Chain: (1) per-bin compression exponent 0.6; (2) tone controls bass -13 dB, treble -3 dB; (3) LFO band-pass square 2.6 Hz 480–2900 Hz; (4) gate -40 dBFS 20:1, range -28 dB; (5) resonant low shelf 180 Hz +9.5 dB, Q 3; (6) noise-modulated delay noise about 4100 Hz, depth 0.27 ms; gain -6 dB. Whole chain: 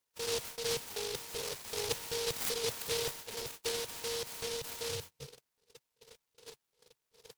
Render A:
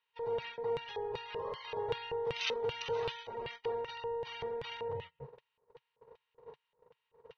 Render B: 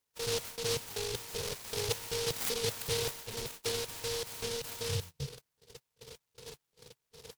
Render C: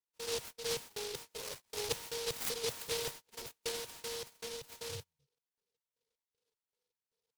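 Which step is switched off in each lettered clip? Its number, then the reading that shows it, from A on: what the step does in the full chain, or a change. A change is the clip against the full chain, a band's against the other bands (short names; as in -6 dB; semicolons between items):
6, 8 kHz band -20.5 dB; 2, 125 Hz band +8.0 dB; 1, crest factor change +2.0 dB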